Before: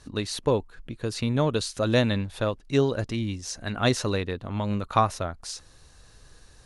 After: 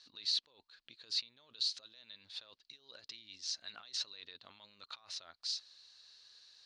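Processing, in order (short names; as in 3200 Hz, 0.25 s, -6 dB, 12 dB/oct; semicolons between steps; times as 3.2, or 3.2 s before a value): negative-ratio compressor -33 dBFS, ratio -1; band-pass 4300 Hz, Q 4.1; air absorption 86 m; gain +2 dB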